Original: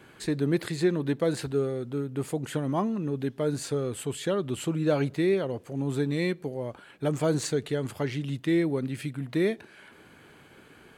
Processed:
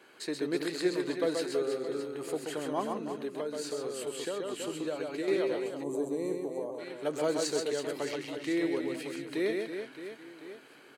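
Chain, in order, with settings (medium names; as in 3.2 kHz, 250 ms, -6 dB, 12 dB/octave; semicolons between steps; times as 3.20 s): Chebyshev high-pass 400 Hz, order 2; peaking EQ 4.2 kHz +5 dB 0.93 oct; band-stop 3.5 kHz, Q 11; reverse bouncing-ball echo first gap 130 ms, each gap 1.5×, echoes 5; 2.96–5.28 s: compression, threshold -28 dBFS, peak gain reduction 8.5 dB; 5.83–6.79 s: time-frequency box 1.2–5.9 kHz -17 dB; trim -3.5 dB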